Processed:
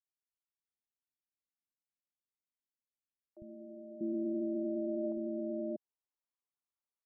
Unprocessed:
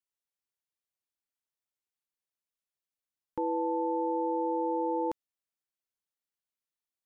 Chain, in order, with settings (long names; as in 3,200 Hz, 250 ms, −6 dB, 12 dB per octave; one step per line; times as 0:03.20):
pitch shifter −6.5 semitones
low-pass filter sweep 250 Hz → 1,100 Hz, 0:02.75–0:06.51
three-band delay without the direct sound highs, lows, mids 50/640 ms, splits 150/580 Hz
level −7.5 dB